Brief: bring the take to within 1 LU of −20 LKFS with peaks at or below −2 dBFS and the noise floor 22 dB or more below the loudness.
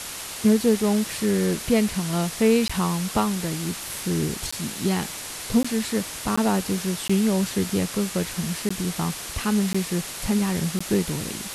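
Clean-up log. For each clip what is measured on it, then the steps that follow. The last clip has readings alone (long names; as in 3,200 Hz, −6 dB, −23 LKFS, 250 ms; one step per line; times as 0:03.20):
number of dropouts 8; longest dropout 15 ms; background noise floor −35 dBFS; target noise floor −46 dBFS; integrated loudness −24.0 LKFS; sample peak −8.0 dBFS; target loudness −20.0 LKFS
→ repair the gap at 0:02.68/0:04.51/0:05.63/0:06.36/0:07.08/0:08.69/0:09.73/0:10.79, 15 ms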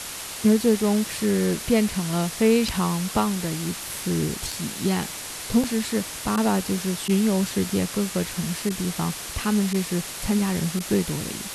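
number of dropouts 0; background noise floor −35 dBFS; target noise floor −46 dBFS
→ broadband denoise 11 dB, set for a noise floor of −35 dBFS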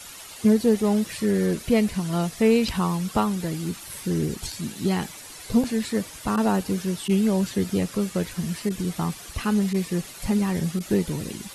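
background noise floor −42 dBFS; target noise floor −47 dBFS
→ broadband denoise 6 dB, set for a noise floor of −42 dBFS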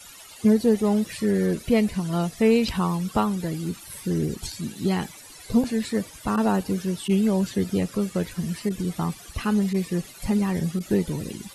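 background noise floor −45 dBFS; target noise floor −47 dBFS
→ broadband denoise 6 dB, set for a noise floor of −45 dBFS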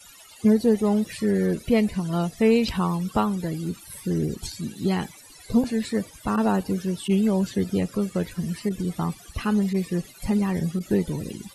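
background noise floor −48 dBFS; integrated loudness −25.0 LKFS; sample peak −8.5 dBFS; target loudness −20.0 LKFS
→ level +5 dB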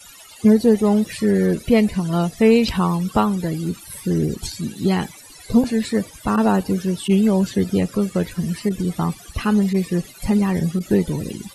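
integrated loudness −20.0 LKFS; sample peak −3.5 dBFS; background noise floor −43 dBFS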